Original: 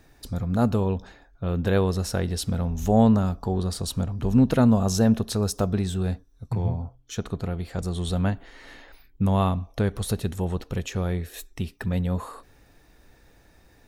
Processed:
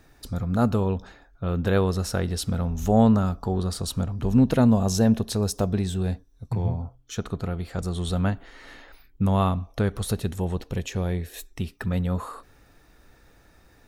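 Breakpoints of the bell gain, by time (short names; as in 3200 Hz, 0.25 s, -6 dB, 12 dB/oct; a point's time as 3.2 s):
bell 1300 Hz 0.29 oct
3.92 s +4.5 dB
4.72 s -4.5 dB
6.44 s -4.5 dB
6.84 s +4 dB
10.02 s +4 dB
10.67 s -5.5 dB
11.32 s -5.5 dB
11.82 s +6.5 dB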